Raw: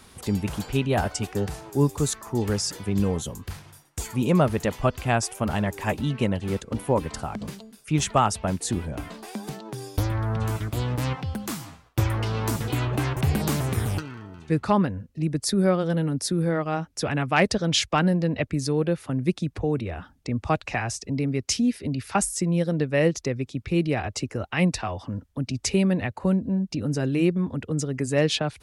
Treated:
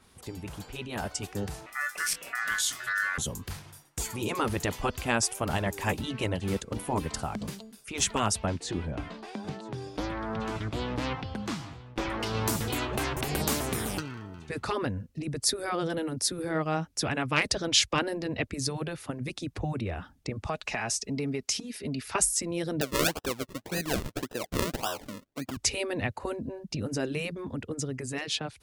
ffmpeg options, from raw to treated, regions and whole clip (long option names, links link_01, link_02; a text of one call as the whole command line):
ffmpeg -i in.wav -filter_complex "[0:a]asettb=1/sr,asplit=3[link_01][link_02][link_03];[link_01]atrim=end=1.664[link_04];[link_02]atrim=start=1.66:end=3.18,asetpts=PTS-STARTPTS,afade=type=in:duration=0.004:curve=qsin,afade=type=out:start_time=1.516:duration=0.004:curve=qsin,acrossover=split=120|3000[link_05][link_06][link_07];[link_06]acompressor=threshold=-26dB:ratio=6:attack=3.2:release=140:knee=2.83:detection=peak[link_08];[link_05][link_08][link_07]amix=inputs=3:normalize=0,aeval=exprs='val(0)*sin(2*PI*1600*n/s)':channel_layout=same,asplit=2[link_09][link_10];[link_10]adelay=24,volume=-9dB[link_11];[link_09][link_11]amix=inputs=2:normalize=0,atrim=end_sample=67032[link_12];[link_03]atrim=start=3.176[link_13];[link_04][link_12]acrossfade=duration=0.004:curve1=hsin:curve2=qsin[link_14];[link_14][link_13]acrossfade=duration=0.004:curve1=qsin:curve2=hsin,asettb=1/sr,asplit=3[link_15][link_16][link_17];[link_15]atrim=end=8.464[link_18];[link_16]atrim=start=8.46:end=12.2,asetpts=PTS-STARTPTS,afade=type=in:duration=0.004:curve=qsin,afade=type=out:start_time=3.736:duration=0.004:curve=qsin,lowpass=4200,aecho=1:1:982:0.1,atrim=end_sample=164934[link_19];[link_17]atrim=start=12.196[link_20];[link_18][link_19]acrossfade=duration=0.004:curve1=hsin:curve2=qsin[link_21];[link_21][link_20]acrossfade=duration=0.004:curve1=qsin:curve2=hsin,asettb=1/sr,asplit=3[link_22][link_23][link_24];[link_22]atrim=end=20.464[link_25];[link_23]atrim=start=20.46:end=22.08,asetpts=PTS-STARTPTS,afade=type=in:duration=0.004:curve=qsin,afade=type=out:start_time=1.616:duration=0.004:curve=qsin,lowshelf=frequency=170:gain=-7.5,aecho=1:1:4.7:0.4,atrim=end_sample=71442,acompressor=threshold=-25dB:ratio=12:attack=3.2:release=140:knee=1:detection=peak[link_26];[link_24]atrim=start=22.076[link_27];[link_25][link_26]acrossfade=duration=0.004:curve1=hsin:curve2=qsin[link_28];[link_28][link_27]acrossfade=duration=0.004:curve1=qsin:curve2=hsin,asettb=1/sr,asplit=3[link_29][link_30][link_31];[link_29]atrim=end=22.814[link_32];[link_30]atrim=start=22.81:end=25.57,asetpts=PTS-STARTPTS,afade=type=in:duration=0.004:curve=qsin,afade=type=out:start_time=2.756:duration=0.004:curve=qsin,highpass=300,acrusher=samples=39:mix=1:aa=0.000001:lfo=1:lforange=39:lforate=1.8[link_33];[link_31]atrim=start=25.566[link_34];[link_32][link_33]acrossfade=duration=0.004:curve1=hsin:curve2=qsin[link_35];[link_35][link_34]acrossfade=duration=0.004:curve1=qsin:curve2=hsin,afftfilt=real='re*lt(hypot(re,im),0.447)':imag='im*lt(hypot(re,im),0.447)':win_size=1024:overlap=0.75,dynaudnorm=framelen=460:gausssize=7:maxgain=8dB,adynamicequalizer=threshold=0.02:dfrequency=2900:dqfactor=0.7:tfrequency=2900:tqfactor=0.7:attack=5:release=100:ratio=0.375:range=2:mode=boostabove:tftype=highshelf,volume=-9dB" out.wav